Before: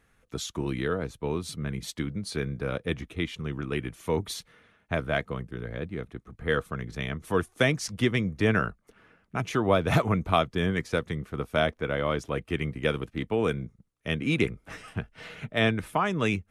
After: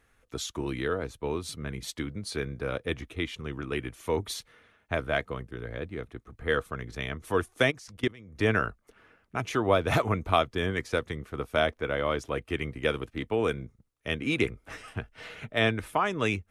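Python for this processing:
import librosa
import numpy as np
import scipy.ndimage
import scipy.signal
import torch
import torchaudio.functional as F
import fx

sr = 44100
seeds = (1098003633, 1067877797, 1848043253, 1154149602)

y = fx.peak_eq(x, sr, hz=170.0, db=-8.5, octaves=0.71)
y = fx.level_steps(y, sr, step_db=24, at=(7.7, 8.35), fade=0.02)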